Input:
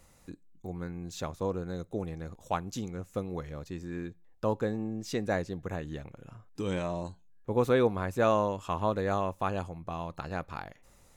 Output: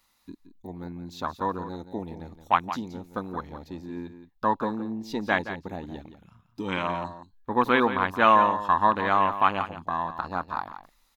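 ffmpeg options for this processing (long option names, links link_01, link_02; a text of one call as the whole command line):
ffmpeg -i in.wav -filter_complex "[0:a]afwtdn=0.0112,equalizer=frequency=125:width_type=o:width=1:gain=-9,equalizer=frequency=250:width_type=o:width=1:gain=7,equalizer=frequency=500:width_type=o:width=1:gain=-6,equalizer=frequency=1000:width_type=o:width=1:gain=12,equalizer=frequency=2000:width_type=o:width=1:gain=4,equalizer=frequency=4000:width_type=o:width=1:gain=11,equalizer=frequency=8000:width_type=o:width=1:gain=-11,crystalizer=i=4.5:c=0,asplit=2[link_01][link_02];[link_02]aecho=0:1:172:0.266[link_03];[link_01][link_03]amix=inputs=2:normalize=0" out.wav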